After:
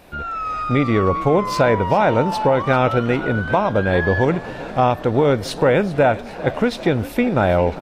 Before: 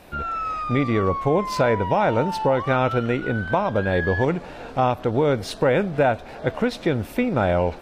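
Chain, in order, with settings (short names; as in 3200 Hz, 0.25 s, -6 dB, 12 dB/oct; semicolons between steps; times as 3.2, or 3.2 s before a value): frequency-shifting echo 0.398 s, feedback 58%, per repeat +36 Hz, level -17 dB; wow and flutter 25 cents; AGC gain up to 4 dB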